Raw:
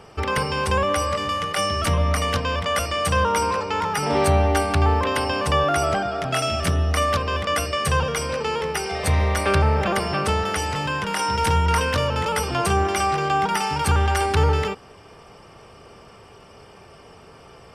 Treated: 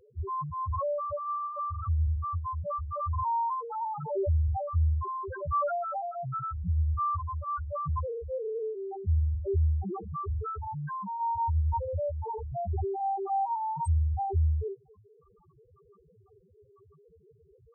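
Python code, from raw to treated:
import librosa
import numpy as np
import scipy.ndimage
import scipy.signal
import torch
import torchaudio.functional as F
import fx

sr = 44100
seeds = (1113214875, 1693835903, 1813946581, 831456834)

y = fx.notch(x, sr, hz=660.0, q=20.0)
y = fx.spec_topn(y, sr, count=1)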